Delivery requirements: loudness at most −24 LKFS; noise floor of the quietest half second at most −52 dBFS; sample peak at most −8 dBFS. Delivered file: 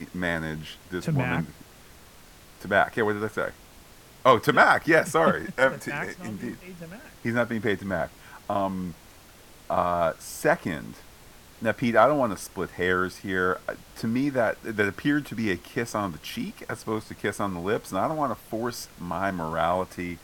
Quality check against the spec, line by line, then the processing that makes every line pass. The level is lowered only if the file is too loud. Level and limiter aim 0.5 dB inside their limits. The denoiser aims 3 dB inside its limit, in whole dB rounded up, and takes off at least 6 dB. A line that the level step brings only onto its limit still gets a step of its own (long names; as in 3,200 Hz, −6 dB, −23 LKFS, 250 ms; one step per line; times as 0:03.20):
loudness −26.0 LKFS: in spec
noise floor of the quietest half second −50 dBFS: out of spec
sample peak −4.5 dBFS: out of spec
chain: broadband denoise 6 dB, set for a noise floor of −50 dBFS
brickwall limiter −8.5 dBFS